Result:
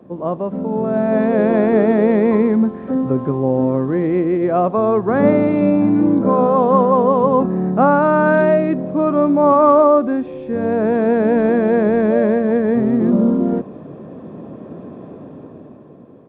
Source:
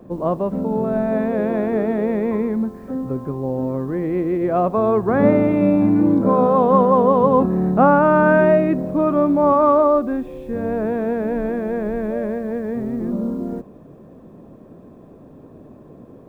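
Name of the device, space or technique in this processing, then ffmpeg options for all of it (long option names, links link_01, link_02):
Bluetooth headset: -af "highpass=110,dynaudnorm=framelen=190:gausssize=11:maxgain=11.5dB,aresample=8000,aresample=44100,volume=-1dB" -ar 32000 -c:a sbc -b:a 64k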